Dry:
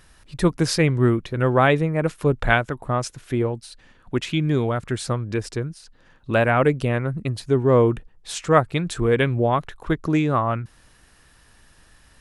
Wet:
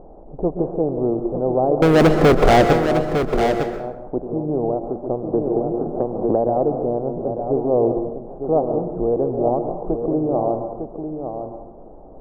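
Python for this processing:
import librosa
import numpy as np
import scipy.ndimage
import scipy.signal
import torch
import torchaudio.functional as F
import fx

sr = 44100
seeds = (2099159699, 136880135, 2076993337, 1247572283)

y = fx.bin_compress(x, sr, power=0.6)
y = scipy.signal.sosfilt(scipy.signal.ellip(4, 1.0, 60, 780.0, 'lowpass', fs=sr, output='sos'), y)
y = fx.peak_eq(y, sr, hz=110.0, db=-13.5, octaves=1.8)
y = fx.leveller(y, sr, passes=5, at=(1.82, 2.73))
y = y + 10.0 ** (-7.5 / 20.0) * np.pad(y, (int(904 * sr / 1000.0), 0))[:len(y)]
y = fx.rev_plate(y, sr, seeds[0], rt60_s=0.87, hf_ratio=0.6, predelay_ms=110, drr_db=7.0)
y = fx.band_squash(y, sr, depth_pct=100, at=(5.33, 6.73))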